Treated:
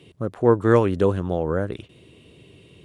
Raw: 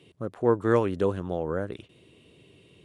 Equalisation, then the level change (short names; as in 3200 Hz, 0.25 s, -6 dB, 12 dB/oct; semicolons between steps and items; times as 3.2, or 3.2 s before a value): low shelf 110 Hz +6.5 dB; +5.0 dB